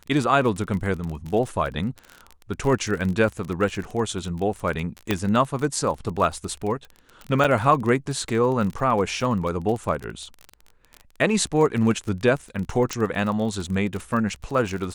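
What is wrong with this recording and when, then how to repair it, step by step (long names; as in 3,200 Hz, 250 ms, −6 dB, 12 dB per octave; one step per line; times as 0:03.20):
surface crackle 29 per second −28 dBFS
0:05.11: click −7 dBFS
0:07.44–0:07.45: drop-out 5.9 ms
0:12.93: click −13 dBFS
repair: click removal
repair the gap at 0:07.44, 5.9 ms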